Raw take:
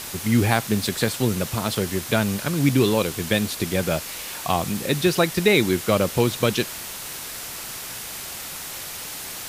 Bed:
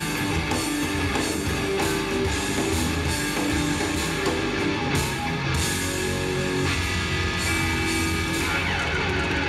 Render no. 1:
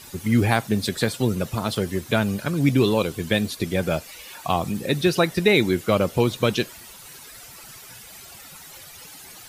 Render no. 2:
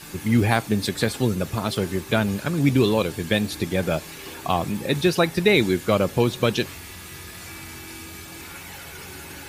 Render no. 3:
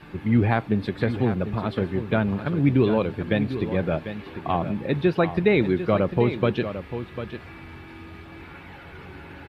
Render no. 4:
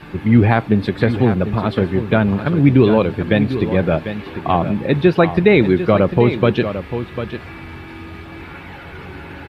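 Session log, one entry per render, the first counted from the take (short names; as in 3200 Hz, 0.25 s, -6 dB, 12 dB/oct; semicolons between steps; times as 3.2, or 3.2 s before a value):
denoiser 13 dB, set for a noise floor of -34 dBFS
add bed -16.5 dB
air absorption 460 m; on a send: echo 0.747 s -10.5 dB
gain +8 dB; limiter -1 dBFS, peak gain reduction 1.5 dB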